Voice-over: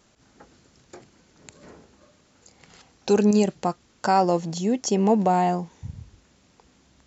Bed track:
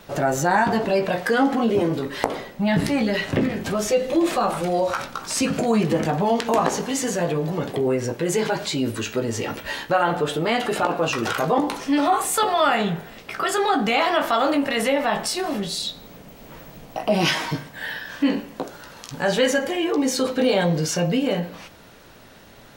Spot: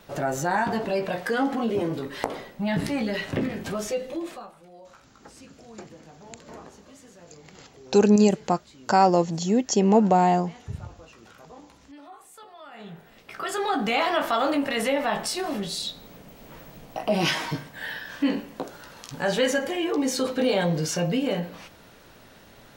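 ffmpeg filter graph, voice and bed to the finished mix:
-filter_complex "[0:a]adelay=4850,volume=1.5dB[a];[1:a]volume=18dB,afade=t=out:st=3.71:d=0.81:silence=0.0841395,afade=t=in:st=12.71:d=1.23:silence=0.0668344[b];[a][b]amix=inputs=2:normalize=0"

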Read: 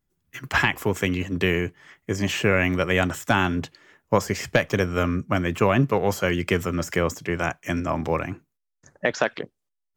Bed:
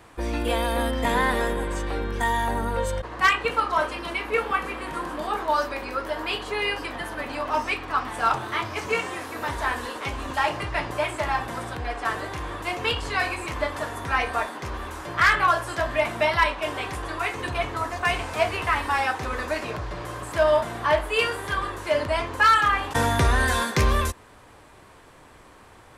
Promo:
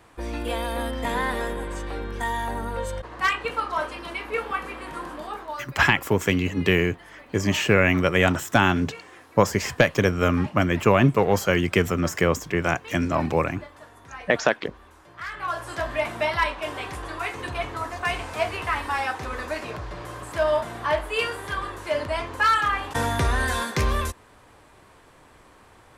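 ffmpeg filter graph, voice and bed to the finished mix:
-filter_complex "[0:a]adelay=5250,volume=2dB[a];[1:a]volume=10.5dB,afade=t=out:st=5.07:d=0.62:silence=0.223872,afade=t=in:st=15.32:d=0.45:silence=0.199526[b];[a][b]amix=inputs=2:normalize=0"

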